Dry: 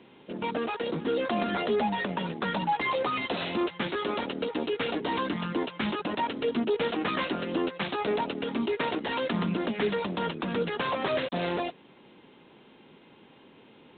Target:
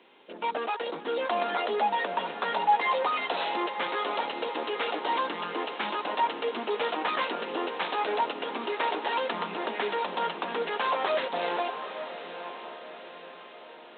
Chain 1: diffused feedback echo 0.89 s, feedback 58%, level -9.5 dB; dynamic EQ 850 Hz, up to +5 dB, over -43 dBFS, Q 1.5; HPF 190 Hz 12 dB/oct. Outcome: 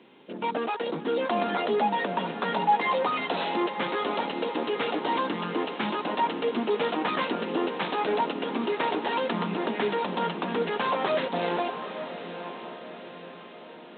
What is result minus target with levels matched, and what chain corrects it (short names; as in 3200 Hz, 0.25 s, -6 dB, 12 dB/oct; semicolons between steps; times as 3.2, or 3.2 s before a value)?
250 Hz band +7.0 dB
diffused feedback echo 0.89 s, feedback 58%, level -9.5 dB; dynamic EQ 850 Hz, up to +5 dB, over -43 dBFS, Q 1.5; HPF 480 Hz 12 dB/oct